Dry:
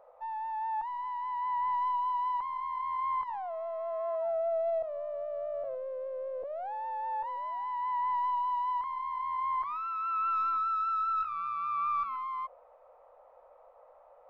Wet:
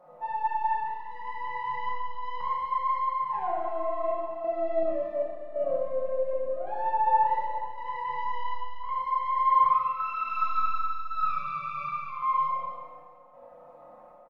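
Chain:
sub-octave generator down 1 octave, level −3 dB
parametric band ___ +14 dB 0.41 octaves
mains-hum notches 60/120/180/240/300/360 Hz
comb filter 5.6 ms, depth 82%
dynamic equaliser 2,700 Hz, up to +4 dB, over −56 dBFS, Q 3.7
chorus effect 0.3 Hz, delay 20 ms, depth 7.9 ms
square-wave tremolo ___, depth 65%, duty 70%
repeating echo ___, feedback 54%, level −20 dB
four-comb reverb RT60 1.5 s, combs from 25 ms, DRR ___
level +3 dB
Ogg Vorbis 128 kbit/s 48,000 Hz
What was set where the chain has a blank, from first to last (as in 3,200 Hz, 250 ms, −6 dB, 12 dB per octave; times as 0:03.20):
150 Hz, 0.9 Hz, 145 ms, −3.5 dB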